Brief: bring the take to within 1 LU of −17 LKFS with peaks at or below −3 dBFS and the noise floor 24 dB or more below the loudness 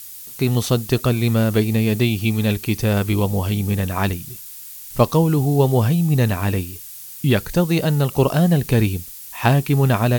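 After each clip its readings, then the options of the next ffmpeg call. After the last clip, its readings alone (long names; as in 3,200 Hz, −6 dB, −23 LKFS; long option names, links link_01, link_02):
background noise floor −37 dBFS; target noise floor −43 dBFS; integrated loudness −19.0 LKFS; sample peak −2.0 dBFS; target loudness −17.0 LKFS
→ -af "afftdn=noise_reduction=6:noise_floor=-37"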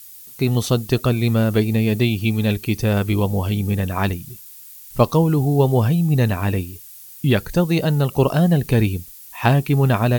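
background noise floor −41 dBFS; target noise floor −43 dBFS
→ -af "afftdn=noise_reduction=6:noise_floor=-41"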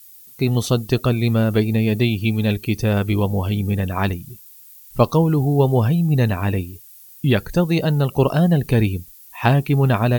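background noise floor −45 dBFS; integrated loudness −19.0 LKFS; sample peak −2.0 dBFS; target loudness −17.0 LKFS
→ -af "volume=2dB,alimiter=limit=-3dB:level=0:latency=1"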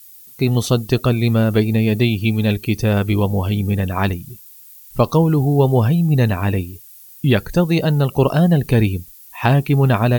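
integrated loudness −17.5 LKFS; sample peak −3.0 dBFS; background noise floor −43 dBFS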